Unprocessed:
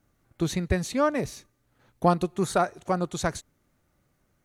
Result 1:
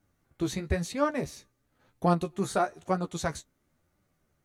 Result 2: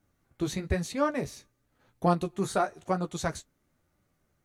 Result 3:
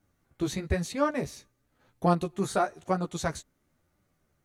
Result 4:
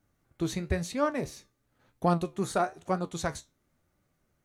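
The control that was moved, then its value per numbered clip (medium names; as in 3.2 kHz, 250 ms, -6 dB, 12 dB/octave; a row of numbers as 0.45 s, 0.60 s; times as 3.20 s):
flange, regen: +23%, -26%, -3%, +63%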